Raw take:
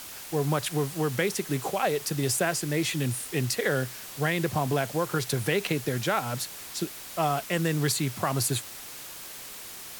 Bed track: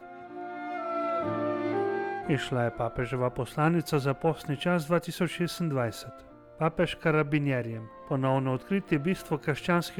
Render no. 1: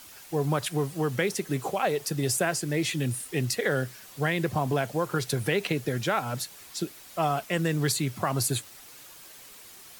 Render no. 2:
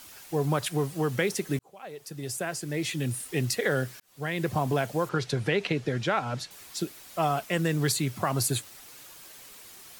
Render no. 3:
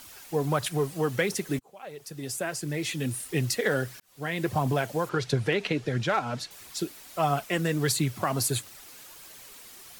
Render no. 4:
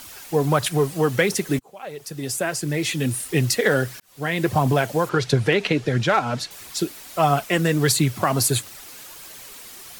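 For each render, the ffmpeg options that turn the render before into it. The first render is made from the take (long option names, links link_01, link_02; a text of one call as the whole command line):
ffmpeg -i in.wav -af "afftdn=noise_reduction=8:noise_floor=-42" out.wav
ffmpeg -i in.wav -filter_complex "[0:a]asettb=1/sr,asplit=3[link_01][link_02][link_03];[link_01]atrim=end=5.094[link_04];[link_02]atrim=start=5.09:end=6.51,asetpts=PTS-STARTPTS,afade=type=in:duration=0.004:curve=qsin,afade=type=out:start_time=1.416:duration=0.004:curve=qsin,lowpass=5400[link_05];[link_03]atrim=start=6.506[link_06];[link_04][link_05]acrossfade=duration=0.004:curve1=hsin:curve2=qsin[link_07];[link_07][link_06]acrossfade=duration=0.004:curve1=qsin:curve2=hsin,asplit=3[link_08][link_09][link_10];[link_08]atrim=end=1.59,asetpts=PTS-STARTPTS,afade=type=out:start_time=1.586:duration=0.004:curve=hsin[link_11];[link_09]atrim=start=1.59:end=4,asetpts=PTS-STARTPTS,afade=type=in:duration=1.72,afade=type=out:start_time=2.406:duration=0.004:curve=hsin[link_12];[link_10]atrim=start=4,asetpts=PTS-STARTPTS,afade=type=in:duration=0.5[link_13];[link_11][link_12][link_13]concat=n=3:v=0:a=1" out.wav
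ffmpeg -i in.wav -af "asoftclip=type=hard:threshold=-15.5dB,aphaser=in_gain=1:out_gain=1:delay=4.8:decay=0.34:speed=1.5:type=triangular" out.wav
ffmpeg -i in.wav -af "volume=7dB" out.wav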